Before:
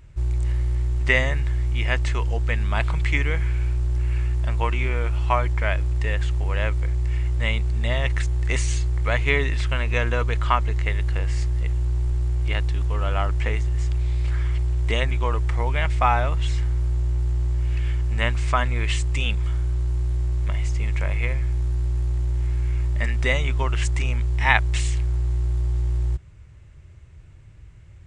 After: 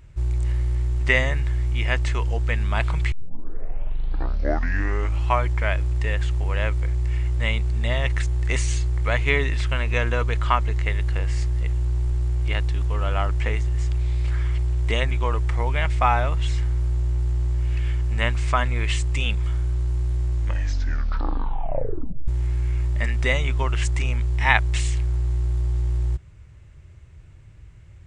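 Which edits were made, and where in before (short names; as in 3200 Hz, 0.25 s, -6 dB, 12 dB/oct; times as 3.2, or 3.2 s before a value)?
3.12 tape start 2.16 s
20.34 tape stop 1.94 s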